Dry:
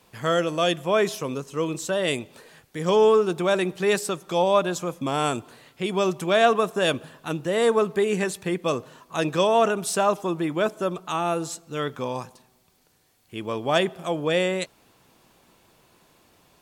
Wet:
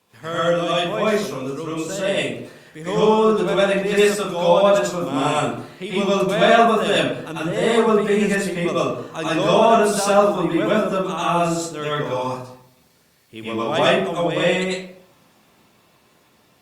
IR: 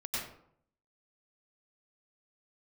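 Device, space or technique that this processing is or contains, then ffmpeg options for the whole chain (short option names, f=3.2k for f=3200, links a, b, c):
far-field microphone of a smart speaker: -filter_complex "[1:a]atrim=start_sample=2205[a];[0:a][a]afir=irnorm=-1:irlink=0,highpass=94,dynaudnorm=f=470:g=13:m=11.5dB,volume=-1dB" -ar 48000 -c:a libopus -b:a 48k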